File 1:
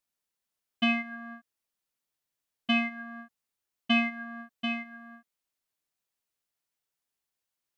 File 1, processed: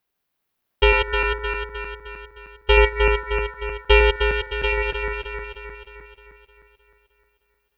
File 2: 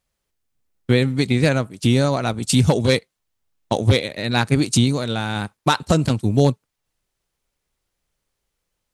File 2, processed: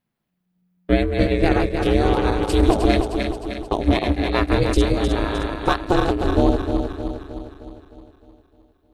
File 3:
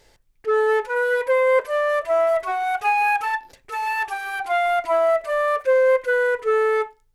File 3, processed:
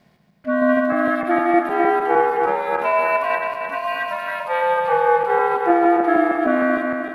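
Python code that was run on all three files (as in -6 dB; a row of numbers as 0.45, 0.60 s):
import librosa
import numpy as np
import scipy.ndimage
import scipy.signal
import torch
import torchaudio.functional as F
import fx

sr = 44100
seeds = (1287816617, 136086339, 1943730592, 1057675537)

y = fx.reverse_delay_fb(x, sr, ms=154, feedback_pct=73, wet_db=-4.5)
y = fx.peak_eq(y, sr, hz=7300.0, db=-13.5, octaves=1.5)
y = y * np.sin(2.0 * np.pi * 180.0 * np.arange(len(y)) / sr)
y = y * 10.0 ** (-2 / 20.0) / np.max(np.abs(y))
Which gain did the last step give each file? +14.0, +1.5, +2.5 dB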